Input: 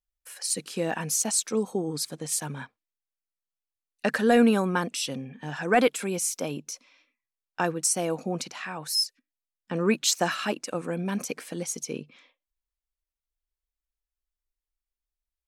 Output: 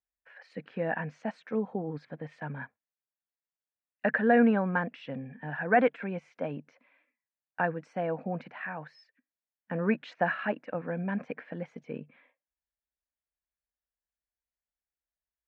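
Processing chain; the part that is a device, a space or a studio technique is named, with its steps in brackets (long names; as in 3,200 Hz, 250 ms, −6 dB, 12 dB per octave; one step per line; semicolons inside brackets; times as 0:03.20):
bass cabinet (loudspeaker in its box 72–2,100 Hz, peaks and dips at 360 Hz −9 dB, 640 Hz +3 dB, 1,200 Hz −6 dB, 1,700 Hz +5 dB)
level −2 dB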